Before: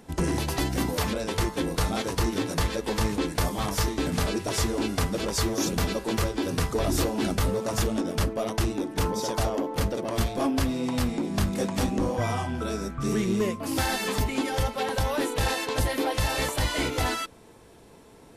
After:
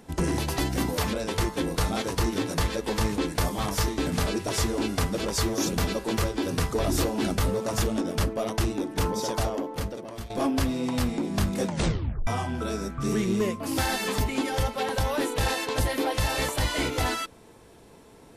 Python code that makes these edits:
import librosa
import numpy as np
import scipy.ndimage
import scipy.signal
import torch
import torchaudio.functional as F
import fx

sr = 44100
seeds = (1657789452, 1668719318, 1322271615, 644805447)

y = fx.edit(x, sr, fx.fade_out_to(start_s=9.32, length_s=0.98, floor_db=-15.0),
    fx.tape_stop(start_s=11.66, length_s=0.61), tone=tone)